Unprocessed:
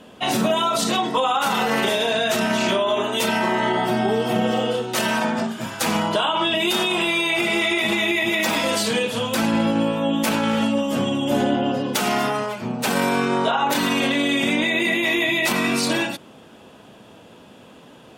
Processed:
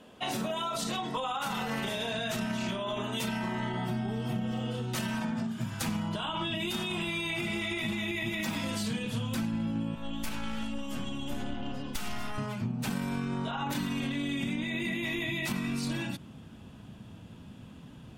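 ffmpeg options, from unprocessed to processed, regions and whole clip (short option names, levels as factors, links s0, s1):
-filter_complex "[0:a]asettb=1/sr,asplit=3[s0][s1][s2];[s0]atrim=end=9.954[s3];[s1]atrim=start=9.95:end=12.38,asetpts=PTS-STARTPTS,afade=t=in:d=0.004:c=qsin,afade=t=out:st=2.426:d=0.004:c=qsin,highpass=f=680:p=1,aeval=exprs='(tanh(7.94*val(0)+0.45)-tanh(0.45))/7.94':c=same[s4];[s2]atrim=start=12.376[s5];[s3][s4]acrossfade=d=0.004:c1=hsin:c2=qsin[s6];[s6][s5]acrossfade=d=0.004:c1=qsin:c2=hsin,asubboost=boost=10:cutoff=150,acompressor=threshold=0.0891:ratio=6,volume=0.376"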